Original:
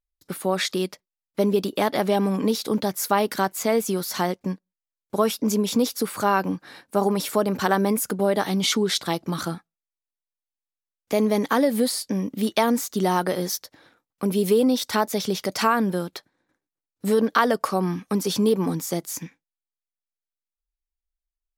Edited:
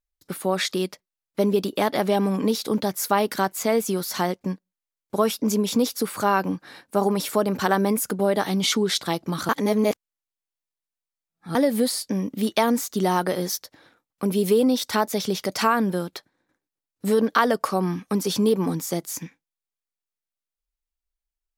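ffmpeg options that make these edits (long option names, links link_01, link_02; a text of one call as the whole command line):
ffmpeg -i in.wav -filter_complex "[0:a]asplit=3[link_01][link_02][link_03];[link_01]atrim=end=9.492[link_04];[link_02]atrim=start=9.488:end=11.552,asetpts=PTS-STARTPTS,areverse[link_05];[link_03]atrim=start=11.548[link_06];[link_04][link_05]acrossfade=duration=0.004:curve1=hsin:curve2=hsin[link_07];[link_07][link_06]acrossfade=duration=0.004:curve1=hsin:curve2=hsin" out.wav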